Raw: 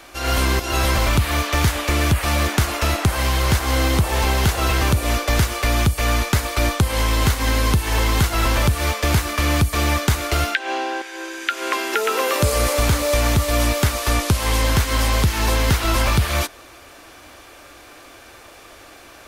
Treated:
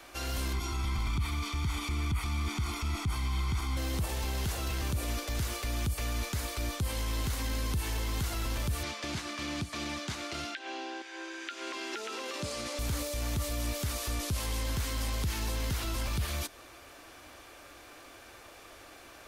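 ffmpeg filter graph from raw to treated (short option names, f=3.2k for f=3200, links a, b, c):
-filter_complex "[0:a]asettb=1/sr,asplit=3[a][b][c];[a]atrim=end=0.534[d];[b]atrim=start=0.53:end=3.77,asetpts=PTS-STARTPTS,afade=t=in:d=0.004:c=qsin,afade=t=out:st=3.236:d=0.004:c=qsin,lowpass=12k,acrossover=split=4400[e][f];[f]acompressor=threshold=-36dB:ratio=4:attack=1:release=60[g];[e][g]amix=inputs=2:normalize=0,aecho=1:1:0.9:0.89,atrim=end_sample=142884[h];[c]atrim=start=3.766[i];[d][h]acrossfade=d=0.004:c1=hsin:c2=qsin[j];[j][i]acrossfade=d=0.004:c1=qsin:c2=hsin,asettb=1/sr,asplit=3[k][l][m];[k]atrim=end=8.834[n];[l]atrim=start=8.83:end=12.79,asetpts=PTS-STARTPTS,afade=t=in:d=0.004:c=qsin,afade=t=out:st=3.956:d=0.004:c=qsin,highpass=190,lowpass=5.7k,equalizer=f=460:w=5.2:g=-8.5[o];[m]atrim=start=12.786[p];[n][o]acrossfade=d=0.004:c1=hsin:c2=qsin[q];[q][p]acrossfade=d=0.004:c1=qsin:c2=hsin,alimiter=limit=-16dB:level=0:latency=1:release=15,acrossover=split=370|3000[r][s][t];[s]acompressor=threshold=-33dB:ratio=6[u];[r][u][t]amix=inputs=3:normalize=0,volume=-8dB"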